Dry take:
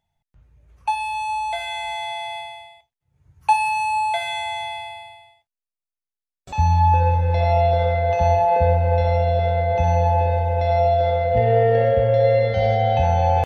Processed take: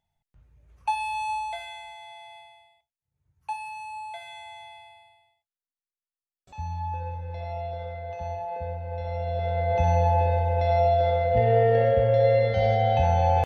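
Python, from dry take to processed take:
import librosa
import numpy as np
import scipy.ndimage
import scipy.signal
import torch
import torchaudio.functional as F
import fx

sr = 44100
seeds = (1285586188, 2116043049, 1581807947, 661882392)

y = fx.gain(x, sr, db=fx.line((1.31, -4.0), (1.95, -16.0), (8.86, -16.0), (9.76, -3.5)))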